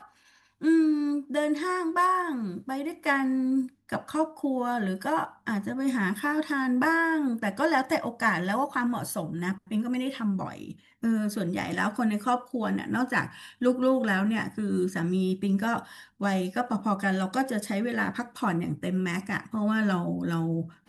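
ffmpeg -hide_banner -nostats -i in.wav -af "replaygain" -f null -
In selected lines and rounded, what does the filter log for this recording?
track_gain = +8.6 dB
track_peak = 0.207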